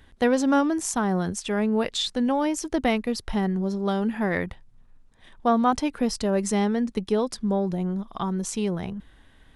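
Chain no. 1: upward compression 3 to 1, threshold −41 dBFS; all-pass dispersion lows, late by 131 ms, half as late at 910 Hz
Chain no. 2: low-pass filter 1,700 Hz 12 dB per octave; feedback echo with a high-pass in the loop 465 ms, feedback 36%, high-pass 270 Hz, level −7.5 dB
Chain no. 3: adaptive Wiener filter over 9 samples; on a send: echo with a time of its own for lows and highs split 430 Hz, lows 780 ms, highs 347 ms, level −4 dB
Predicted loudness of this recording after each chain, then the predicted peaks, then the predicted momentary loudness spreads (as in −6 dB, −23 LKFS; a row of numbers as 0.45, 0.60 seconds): −25.0, −25.5, −24.0 LKFS; −8.5, −9.5, −9.0 dBFS; 7, 9, 7 LU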